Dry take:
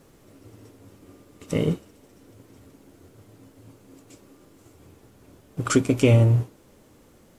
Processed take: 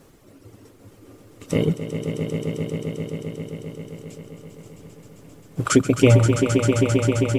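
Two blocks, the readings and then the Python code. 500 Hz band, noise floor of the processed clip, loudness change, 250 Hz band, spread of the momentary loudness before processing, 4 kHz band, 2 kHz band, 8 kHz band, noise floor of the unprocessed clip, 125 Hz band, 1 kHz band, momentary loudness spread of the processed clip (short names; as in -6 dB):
+6.0 dB, -51 dBFS, +0.5 dB, +5.5 dB, 17 LU, +5.5 dB, +6.0 dB, +6.0 dB, -55 dBFS, +2.5 dB, +6.0 dB, 21 LU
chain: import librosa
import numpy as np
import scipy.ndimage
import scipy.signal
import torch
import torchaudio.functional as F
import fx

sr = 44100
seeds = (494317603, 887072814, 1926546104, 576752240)

y = fx.dereverb_blind(x, sr, rt60_s=2.0)
y = fx.echo_swell(y, sr, ms=132, loudest=5, wet_db=-9.0)
y = y * librosa.db_to_amplitude(3.5)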